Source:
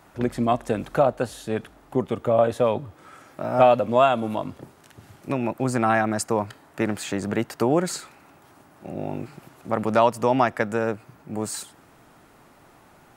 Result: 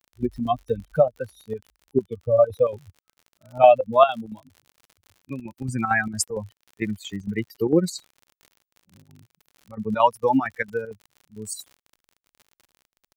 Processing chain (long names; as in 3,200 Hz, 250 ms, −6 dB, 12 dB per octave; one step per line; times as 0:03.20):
spectral dynamics exaggerated over time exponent 3
surface crackle 63 per second −45 dBFS
square-wave tremolo 4.4 Hz, depth 60%, duty 75%
level +7.5 dB